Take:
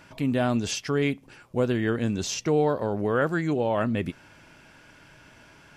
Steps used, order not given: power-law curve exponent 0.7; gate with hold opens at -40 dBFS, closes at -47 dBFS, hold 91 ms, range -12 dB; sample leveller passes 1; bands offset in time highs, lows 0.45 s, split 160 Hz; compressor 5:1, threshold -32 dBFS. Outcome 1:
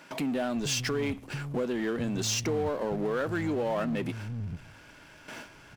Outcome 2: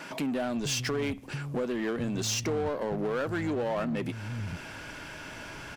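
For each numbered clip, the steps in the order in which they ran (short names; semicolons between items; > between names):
compressor > gate with hold > sample leveller > bands offset in time > power-law curve; compressor > bands offset in time > sample leveller > power-law curve > gate with hold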